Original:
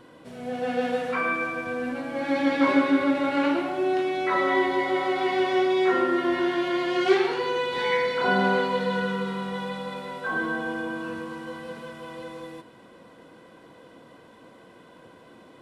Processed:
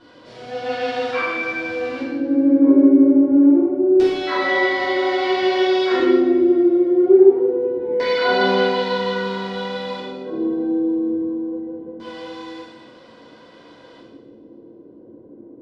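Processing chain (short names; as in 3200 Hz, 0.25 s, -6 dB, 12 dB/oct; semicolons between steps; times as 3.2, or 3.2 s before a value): LFO low-pass square 0.25 Hz 360–4900 Hz; two-slope reverb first 0.97 s, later 3 s, from -20 dB, DRR -10 dB; gain -6 dB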